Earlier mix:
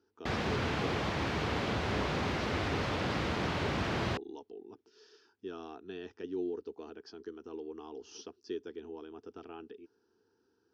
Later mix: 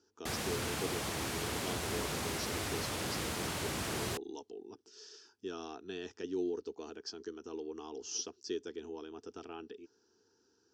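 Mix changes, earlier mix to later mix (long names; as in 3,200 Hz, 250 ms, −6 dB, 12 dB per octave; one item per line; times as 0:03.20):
background −6.5 dB
master: remove high-frequency loss of the air 230 metres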